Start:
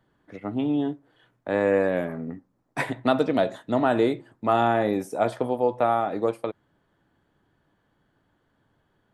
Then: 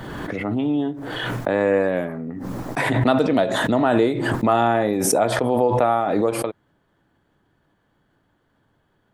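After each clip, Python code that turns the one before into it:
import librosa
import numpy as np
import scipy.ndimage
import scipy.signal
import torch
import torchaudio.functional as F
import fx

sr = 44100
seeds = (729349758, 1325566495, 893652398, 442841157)

y = fx.pre_swell(x, sr, db_per_s=24.0)
y = y * 10.0 ** (2.5 / 20.0)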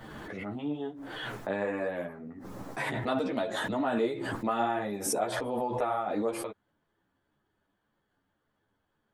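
y = fx.low_shelf(x, sr, hz=330.0, db=-4.0)
y = fx.ensemble(y, sr)
y = y * 10.0 ** (-7.0 / 20.0)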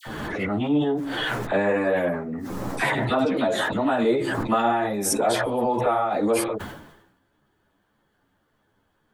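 y = fx.rider(x, sr, range_db=3, speed_s=0.5)
y = fx.dispersion(y, sr, late='lows', ms=61.0, hz=1500.0)
y = fx.sustainer(y, sr, db_per_s=62.0)
y = y * 10.0 ** (9.0 / 20.0)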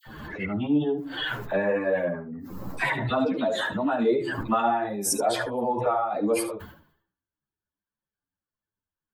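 y = fx.bin_expand(x, sr, power=1.5)
y = y + 10.0 ** (-13.5 / 20.0) * np.pad(y, (int(73 * sr / 1000.0), 0))[:len(y)]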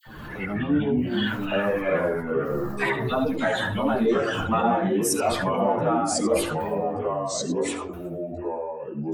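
y = fx.echo_pitch(x, sr, ms=81, semitones=-3, count=2, db_per_echo=-3.0)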